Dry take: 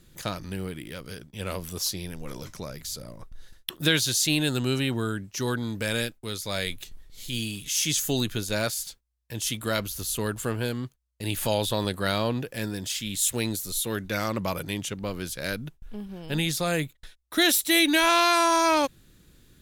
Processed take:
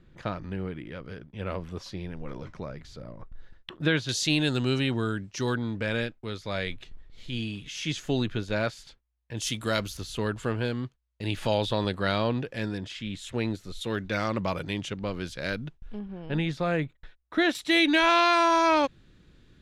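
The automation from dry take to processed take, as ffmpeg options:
ffmpeg -i in.wav -af "asetnsamples=nb_out_samples=441:pad=0,asendcmd='4.09 lowpass f 5000;5.57 lowpass f 2700;9.37 lowpass f 6900;9.97 lowpass f 3900;12.78 lowpass f 2400;13.81 lowpass f 4200;15.99 lowpass f 2100;17.55 lowpass f 3700',lowpass=2100" out.wav

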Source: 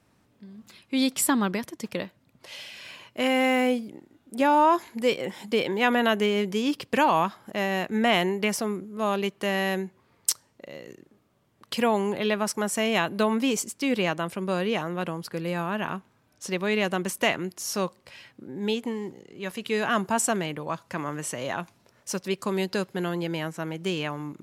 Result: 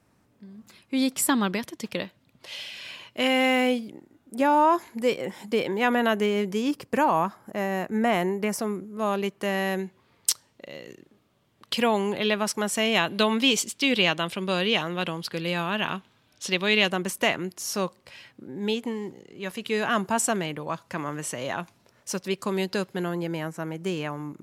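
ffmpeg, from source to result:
ffmpeg -i in.wav -af "asetnsamples=nb_out_samples=441:pad=0,asendcmd='1.29 equalizer g 5;3.91 equalizer g -4;6.71 equalizer g -11;8.59 equalizer g -3.5;9.79 equalizer g 5.5;13.09 equalizer g 12.5;16.9 equalizer g 1;23.03 equalizer g -6',equalizer=frequency=3400:width_type=o:width=1.1:gain=-3.5" out.wav

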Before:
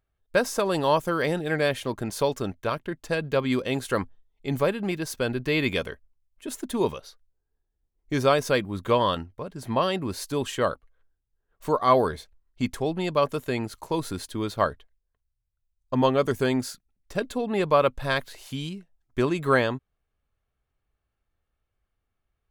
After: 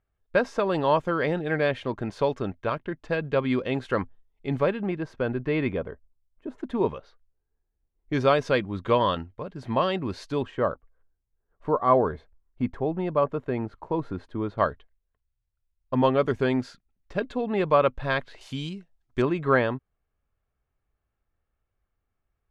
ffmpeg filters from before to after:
ffmpeg -i in.wav -af "asetnsamples=nb_out_samples=441:pad=0,asendcmd='4.82 lowpass f 1700;5.72 lowpass f 1000;6.58 lowpass f 2000;8.13 lowpass f 3600;10.43 lowpass f 1400;14.58 lowpass f 3000;18.41 lowpass f 6300;19.22 lowpass f 2400',lowpass=2800" out.wav

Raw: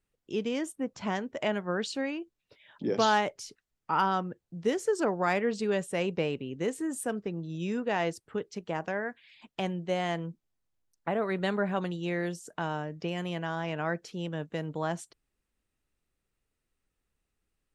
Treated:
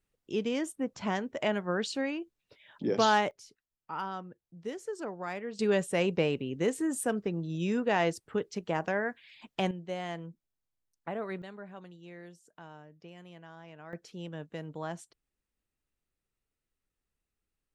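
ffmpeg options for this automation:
ffmpeg -i in.wav -af "asetnsamples=nb_out_samples=441:pad=0,asendcmd='3.31 volume volume -10dB;5.59 volume volume 2dB;9.71 volume volume -6.5dB;11.42 volume volume -16.5dB;13.93 volume volume -6dB',volume=0dB" out.wav

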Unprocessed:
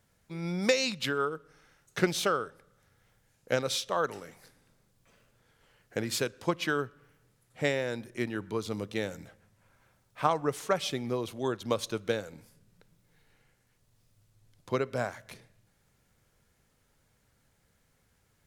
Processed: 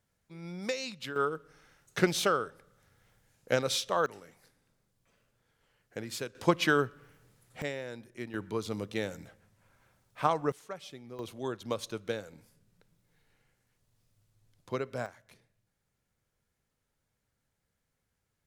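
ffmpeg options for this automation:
ffmpeg -i in.wav -af "asetnsamples=nb_out_samples=441:pad=0,asendcmd='1.16 volume volume 0.5dB;4.06 volume volume -7dB;6.35 volume volume 4dB;7.62 volume volume -8dB;8.34 volume volume -1dB;10.52 volume volume -14dB;11.19 volume volume -4.5dB;15.06 volume volume -11.5dB',volume=-8.5dB" out.wav

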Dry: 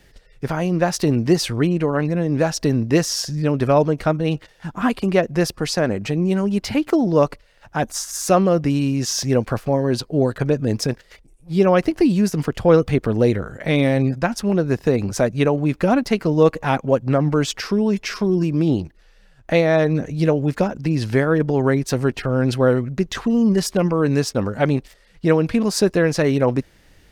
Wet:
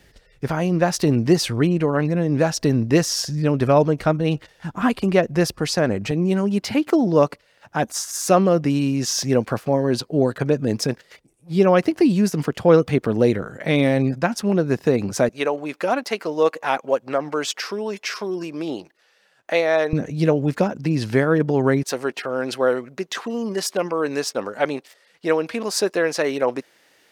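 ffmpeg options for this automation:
ffmpeg -i in.wav -af "asetnsamples=nb_out_samples=441:pad=0,asendcmd='6.11 highpass f 130;15.29 highpass f 480;19.93 highpass f 120;21.83 highpass f 420',highpass=41" out.wav

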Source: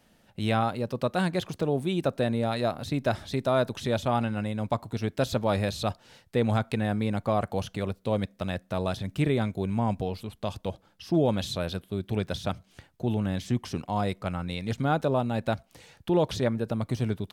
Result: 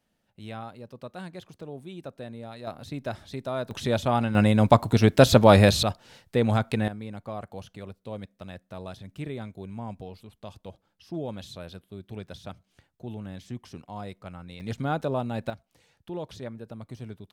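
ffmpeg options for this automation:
ffmpeg -i in.wav -af "asetnsamples=nb_out_samples=441:pad=0,asendcmd='2.67 volume volume -6.5dB;3.71 volume volume 2dB;4.35 volume volume 11dB;5.83 volume volume 2dB;6.88 volume volume -10dB;14.6 volume volume -2.5dB;15.5 volume volume -11.5dB',volume=-13dB" out.wav

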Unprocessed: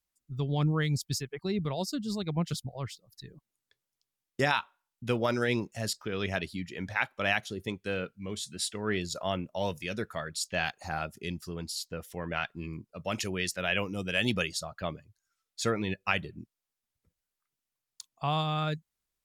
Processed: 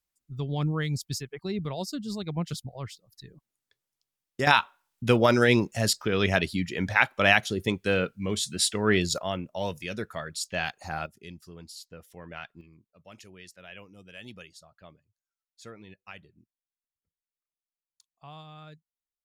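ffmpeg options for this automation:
ffmpeg -i in.wav -af "asetnsamples=nb_out_samples=441:pad=0,asendcmd='4.47 volume volume 8dB;9.18 volume volume 0.5dB;11.06 volume volume -8dB;12.61 volume volume -16.5dB',volume=-0.5dB" out.wav

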